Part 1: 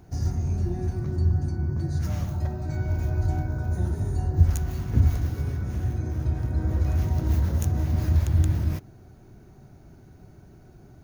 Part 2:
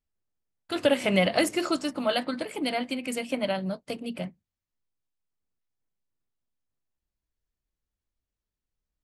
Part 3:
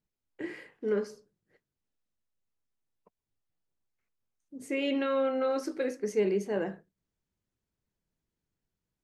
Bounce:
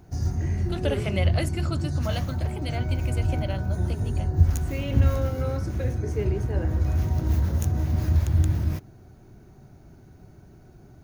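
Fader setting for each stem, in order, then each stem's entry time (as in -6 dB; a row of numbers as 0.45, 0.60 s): 0.0, -6.5, -3.5 dB; 0.00, 0.00, 0.00 s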